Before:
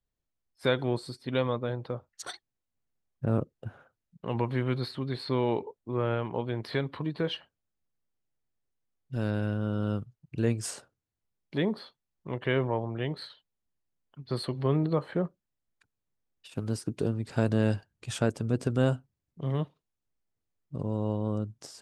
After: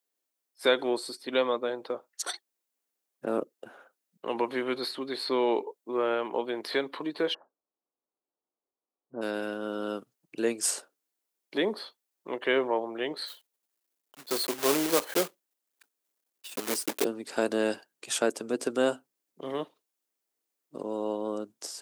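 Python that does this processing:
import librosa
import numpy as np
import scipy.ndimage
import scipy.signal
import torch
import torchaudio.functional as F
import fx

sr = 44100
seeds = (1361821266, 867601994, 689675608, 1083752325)

y = fx.steep_lowpass(x, sr, hz=1200.0, slope=36, at=(7.33, 9.21), fade=0.02)
y = fx.block_float(y, sr, bits=3, at=(13.26, 17.03), fade=0.02)
y = scipy.signal.sosfilt(scipy.signal.butter(4, 290.0, 'highpass', fs=sr, output='sos'), y)
y = fx.high_shelf(y, sr, hz=6300.0, db=10.0)
y = F.gain(torch.from_numpy(y), 3.0).numpy()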